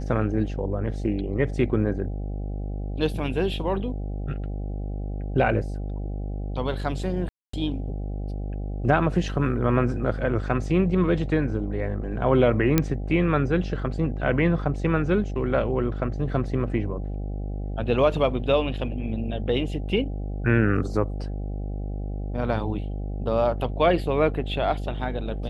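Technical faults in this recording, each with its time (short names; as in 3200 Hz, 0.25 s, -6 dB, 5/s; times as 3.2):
buzz 50 Hz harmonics 16 -30 dBFS
7.29–7.53 gap 0.244 s
12.78 pop -5 dBFS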